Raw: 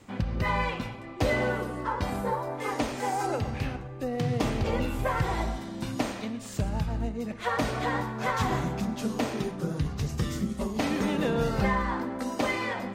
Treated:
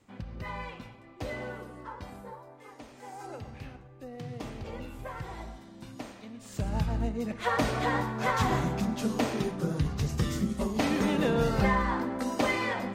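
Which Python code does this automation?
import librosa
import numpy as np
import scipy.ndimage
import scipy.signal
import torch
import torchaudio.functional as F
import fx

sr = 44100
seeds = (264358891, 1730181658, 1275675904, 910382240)

y = fx.gain(x, sr, db=fx.line((1.82, -11.0), (2.77, -19.5), (3.35, -12.0), (6.23, -12.0), (6.78, 0.5)))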